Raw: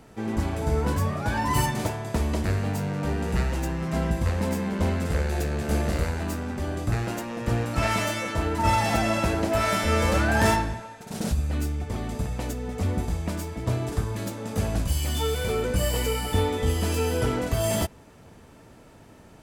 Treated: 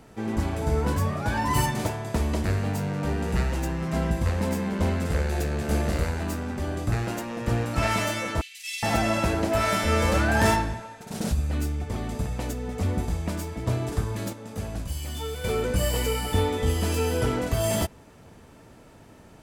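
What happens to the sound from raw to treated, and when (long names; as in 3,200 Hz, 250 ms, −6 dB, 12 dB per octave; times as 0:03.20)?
0:08.41–0:08.83: Butterworth high-pass 2,300 Hz 48 dB per octave
0:14.33–0:15.44: clip gain −6.5 dB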